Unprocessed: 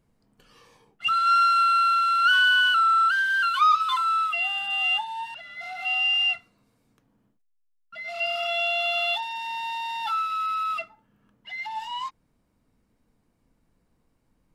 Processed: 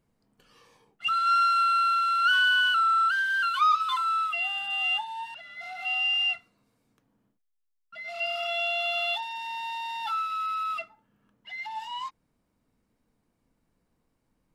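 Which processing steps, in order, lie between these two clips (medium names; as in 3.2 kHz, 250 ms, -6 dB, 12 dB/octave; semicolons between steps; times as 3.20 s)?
bass shelf 120 Hz -4.5 dB; trim -3 dB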